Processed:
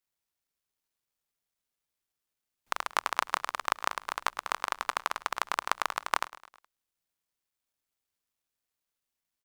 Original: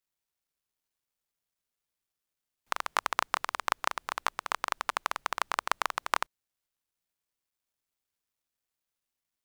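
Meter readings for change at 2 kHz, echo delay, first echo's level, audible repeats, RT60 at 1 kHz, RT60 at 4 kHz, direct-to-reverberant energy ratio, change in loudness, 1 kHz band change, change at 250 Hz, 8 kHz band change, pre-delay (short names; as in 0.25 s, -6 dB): 0.0 dB, 0.105 s, -18.0 dB, 3, none, none, none, 0.0 dB, 0.0 dB, 0.0 dB, 0.0 dB, none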